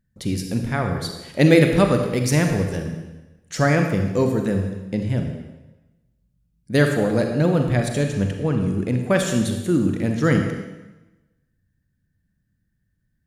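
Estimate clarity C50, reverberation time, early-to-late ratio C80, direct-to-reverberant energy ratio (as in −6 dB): 5.0 dB, 1.1 s, 6.5 dB, 4.0 dB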